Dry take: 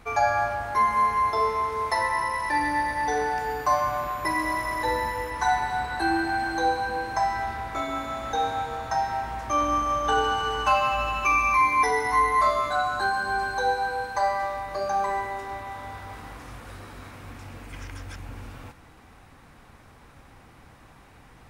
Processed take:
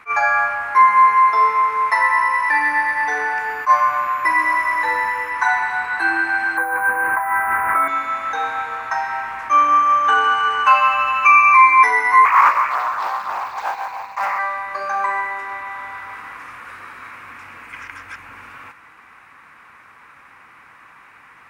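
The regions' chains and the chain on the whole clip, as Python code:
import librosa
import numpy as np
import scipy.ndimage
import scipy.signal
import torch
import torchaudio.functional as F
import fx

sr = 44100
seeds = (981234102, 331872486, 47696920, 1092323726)

y = fx.chain(x, sr, fx.ladder_lowpass(hz=2200.0, resonance_pct=20),
    fx.resample_bad(factor=4, down='filtered', up='hold'),
    fx.env_flatten(amount_pct=100), at=(6.57, 7.88))
y = fx.chain(y, sr, fx.quant_float(bits=2),
    fx.fixed_phaser(hz=2300.0, stages=8),
    fx.doppler_dist(depth_ms=0.71), at=(12.25, 14.39))
y = fx.highpass(y, sr, hz=340.0, slope=6)
y = fx.band_shelf(y, sr, hz=1600.0, db=13.5, octaves=1.7)
y = fx.attack_slew(y, sr, db_per_s=420.0)
y = F.gain(torch.from_numpy(y), -1.5).numpy()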